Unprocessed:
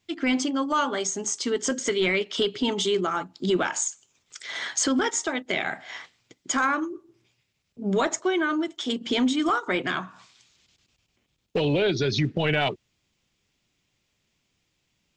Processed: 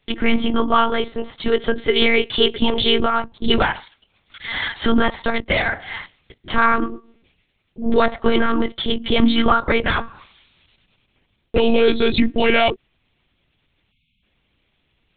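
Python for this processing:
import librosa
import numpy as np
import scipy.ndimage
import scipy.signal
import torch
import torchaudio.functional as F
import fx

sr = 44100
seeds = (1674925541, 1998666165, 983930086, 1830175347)

y = fx.lpc_monotone(x, sr, seeds[0], pitch_hz=230.0, order=10)
y = fx.spec_erase(y, sr, start_s=13.91, length_s=0.32, low_hz=260.0, high_hz=2100.0)
y = y * librosa.db_to_amplitude(8.5)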